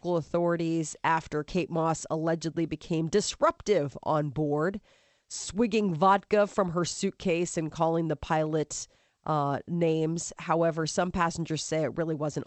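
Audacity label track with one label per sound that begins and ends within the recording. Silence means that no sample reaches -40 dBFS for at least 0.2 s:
5.310000	8.840000	sound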